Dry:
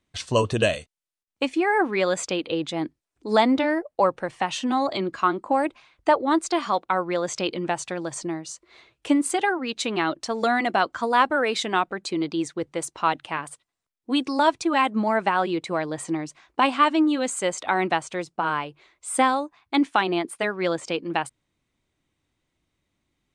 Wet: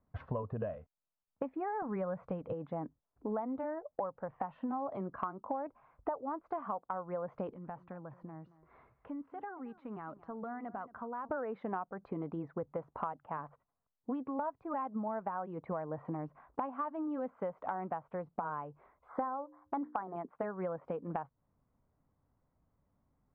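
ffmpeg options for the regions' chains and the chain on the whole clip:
-filter_complex "[0:a]asettb=1/sr,asplit=3[s0][s1][s2];[s0]atrim=end=1.824[s3];[s1]atrim=start=1.82:end=2.53,asetpts=PTS-STARTPTS,afade=t=in:d=0.004:c=qsin,afade=t=out:st=0.706:d=0.004:c=qsin,lowshelf=f=200:t=q:w=1.5:g=7,acontrast=37[s4];[s2]atrim=start=2.526[s5];[s3][s4]acrossfade=d=0.004:c1=hsin:c2=qsin[s6];[s6][s5]acrossfade=d=0.004:c1=qsin:c2=hsin,asettb=1/sr,asplit=3[s7][s8][s9];[s7]atrim=end=7.534[s10];[s8]atrim=start=7.53:end=11.29,asetpts=PTS-STARTPTS,afade=t=in:d=0.004:c=qsin,afade=t=out:st=3.756:d=0.004:c=qsin,equalizer=f=600:w=1:g=-6,acompressor=threshold=0.00501:ratio=2.5:attack=3.2:release=140:knee=1:detection=peak,aecho=1:1:225:0.126,atrim=end_sample=165816[s11];[s9]atrim=start=11.286[s12];[s10][s11]acrossfade=d=0.004:c1=hsin:c2=qsin[s13];[s13][s12]acrossfade=d=0.004:c1=qsin:c2=hsin,asettb=1/sr,asplit=3[s14][s15][s16];[s14]atrim=end=19.084[s17];[s15]atrim=start=19.08:end=20.16,asetpts=PTS-STARTPTS,afade=t=in:d=0.004:c=qsin,afade=t=out:st=1.076:d=0.004:c=qsin,asuperstop=centerf=2700:order=4:qfactor=1.9,equalizer=f=1300:t=o:w=3:g=5,bandreject=f=60:t=h:w=6,bandreject=f=120:t=h:w=6,bandreject=f=180:t=h:w=6,bandreject=f=240:t=h:w=6,bandreject=f=300:t=h:w=6,bandreject=f=360:t=h:w=6,bandreject=f=420:t=h:w=6,bandreject=f=480:t=h:w=6,bandreject=f=540:t=h:w=6[s18];[s16]atrim=start=20.156[s19];[s17][s18]acrossfade=d=0.004:c1=hsin:c2=qsin[s20];[s20][s19]acrossfade=d=0.004:c1=qsin:c2=hsin,lowpass=f=1200:w=0.5412,lowpass=f=1200:w=1.3066,equalizer=f=340:t=o:w=0.33:g=-13,acompressor=threshold=0.0141:ratio=8,volume=1.26"

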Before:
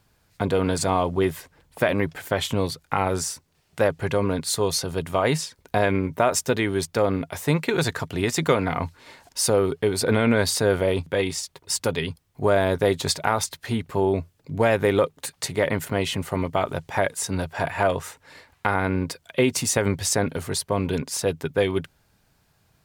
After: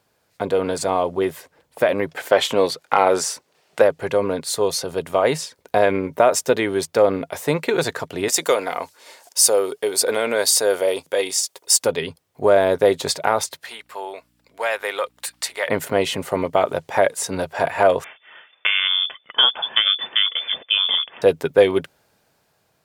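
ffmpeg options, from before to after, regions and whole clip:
-filter_complex "[0:a]asettb=1/sr,asplit=3[s0][s1][s2];[s0]atrim=end=2.174[s3];[s1]atrim=start=2.17:end=3.82,asetpts=PTS-STARTPTS,afade=t=in:d=0.004:c=qsin,afade=t=out:st=1.646:d=0.004:c=qsin,highpass=f=360:p=1,highshelf=f=7900:g=-7.5,acontrast=84[s4];[s2]atrim=start=3.816[s5];[s3][s4]acrossfade=d=0.004:c1=hsin:c2=qsin[s6];[s6][s5]acrossfade=d=0.004:c1=qsin:c2=hsin,asettb=1/sr,asplit=3[s7][s8][s9];[s7]atrim=end=8.284[s10];[s8]atrim=start=8.28:end=11.84,asetpts=PTS-STARTPTS,afade=t=in:d=0.004:c=qsin,afade=t=out:st=3.556:d=0.004:c=qsin,bass=f=250:g=-15,treble=f=4000:g=11,bandreject=f=4100:w=22[s11];[s9]atrim=start=11.836[s12];[s10][s11]acrossfade=d=0.004:c1=hsin:c2=qsin[s13];[s13][s12]acrossfade=d=0.004:c1=qsin:c2=hsin,asettb=1/sr,asplit=3[s14][s15][s16];[s14]atrim=end=13.644[s17];[s15]atrim=start=13.64:end=15.69,asetpts=PTS-STARTPTS,afade=t=in:d=0.004:c=qsin,afade=t=out:st=2.046:d=0.004:c=qsin,highpass=1100,bandreject=f=6400:w=17,aeval=exprs='val(0)+0.00126*(sin(2*PI*60*n/s)+sin(2*PI*2*60*n/s)/2+sin(2*PI*3*60*n/s)/3+sin(2*PI*4*60*n/s)/4+sin(2*PI*5*60*n/s)/5)':c=same[s18];[s16]atrim=start=15.686[s19];[s17][s18]acrossfade=d=0.004:c1=hsin:c2=qsin[s20];[s20][s19]acrossfade=d=0.004:c1=qsin:c2=hsin,asettb=1/sr,asplit=3[s21][s22][s23];[s21]atrim=end=18.044[s24];[s22]atrim=start=18.04:end=21.22,asetpts=PTS-STARTPTS,afade=t=in:d=0.004:c=qsin,afade=t=out:st=3.176:d=0.004:c=qsin,asuperstop=centerf=730:order=4:qfactor=7.5,lowpass=f=3100:t=q:w=0.5098,lowpass=f=3100:t=q:w=0.6013,lowpass=f=3100:t=q:w=0.9,lowpass=f=3100:t=q:w=2.563,afreqshift=-3600[s25];[s23]atrim=start=21.216[s26];[s24][s25]acrossfade=d=0.004:c1=hsin:c2=qsin[s27];[s27][s26]acrossfade=d=0.004:c1=qsin:c2=hsin,highpass=f=270:p=1,equalizer=f=530:t=o:w=1.1:g=6.5,dynaudnorm=f=590:g=5:m=3.76,volume=0.891"

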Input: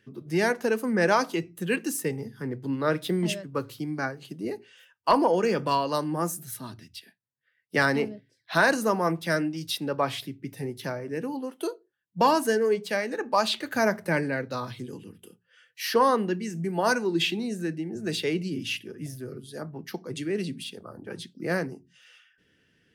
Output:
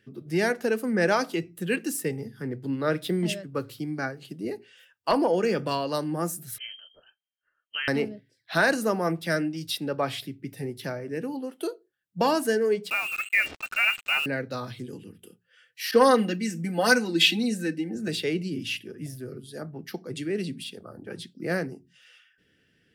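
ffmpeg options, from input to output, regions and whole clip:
-filter_complex "[0:a]asettb=1/sr,asplit=3[s0][s1][s2];[s0]atrim=end=6.584[s3];[s1]atrim=start=6.58:end=7.88,asetpts=PTS-STARTPTS,afade=t=in:d=0.004:c=qsin,afade=t=out:st=1.296:d=0.004:c=qsin,equalizer=f=2500:t=o:w=0.91:g=-5.5,acompressor=threshold=0.0251:ratio=2:attack=3.2:release=140:knee=1:detection=peak,lowpass=f=2800:t=q:w=0.5098,lowpass=f=2800:t=q:w=0.6013,lowpass=f=2800:t=q:w=0.9,lowpass=f=2800:t=q:w=2.563,afreqshift=-3300[s4];[s2]atrim=start=7.876[s5];[s3][s4]acrossfade=d=0.004:c1=hsin:c2=qsin[s6];[s6][s5]acrossfade=d=0.004:c1=qsin:c2=hsin,asettb=1/sr,asplit=3[s7][s8][s9];[s7]atrim=end=12.904[s10];[s8]atrim=start=12.9:end=14.26,asetpts=PTS-STARTPTS,afade=t=in:d=0.004:c=qsin,afade=t=out:st=1.356:d=0.004:c=qsin,lowpass=f=2600:t=q:w=0.5098,lowpass=f=2600:t=q:w=0.6013,lowpass=f=2600:t=q:w=0.9,lowpass=f=2600:t=q:w=2.563,afreqshift=-3000,acrusher=bits=5:mix=0:aa=0.5[s11];[s9]atrim=start=14.256[s12];[s10][s11]acrossfade=d=0.004:c1=hsin:c2=qsin[s13];[s13][s12]acrossfade=d=0.004:c1=qsin:c2=hsin,asettb=1/sr,asplit=3[s14][s15][s16];[s14]atrim=end=15.914[s17];[s15]atrim=start=15.91:end=18.08,asetpts=PTS-STARTPTS,afade=t=in:d=0.004:c=qsin,afade=t=out:st=2.166:d=0.004:c=qsin,aecho=1:1:3.9:0.89,atrim=end_sample=95697,adynamicequalizer=threshold=0.0224:dfrequency=1600:dqfactor=0.7:tfrequency=1600:tqfactor=0.7:attack=5:release=100:ratio=0.375:range=3:mode=boostabove:tftype=highshelf[s18];[s16]atrim=start=18.076[s19];[s17][s18]acrossfade=d=0.004:c1=hsin:c2=qsin[s20];[s20][s19]acrossfade=d=0.004:c1=qsin:c2=hsin,equalizer=f=1000:t=o:w=0.35:g=-7.5,bandreject=f=6300:w=15"

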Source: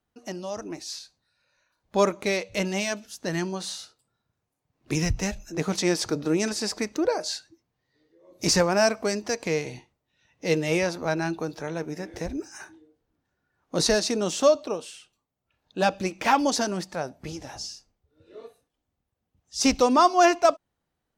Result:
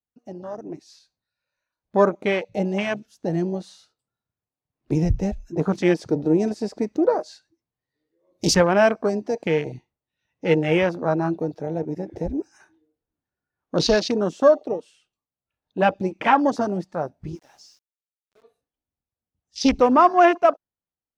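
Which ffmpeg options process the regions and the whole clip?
-filter_complex "[0:a]asettb=1/sr,asplit=3[s0][s1][s2];[s0]atrim=end=17.354[s3];[s1]atrim=start=17.35:end=18.43,asetpts=PTS-STARTPTS,afade=t=in:d=0.004:c=qsin,afade=t=out:st=1.076:d=0.004:c=qsin,highpass=f=620:p=1,aeval=exprs='val(0)*gte(abs(val(0)),0.00531)':c=same[s4];[s2]atrim=start=18.426[s5];[s3][s4]acrossfade=d=0.004:c1=hsin:c2=qsin[s6];[s6][s5]acrossfade=d=0.004:c1=qsin:c2=hsin,afwtdn=0.0316,highshelf=f=6700:g=-7.5,dynaudnorm=f=110:g=13:m=2.24,volume=0.841"

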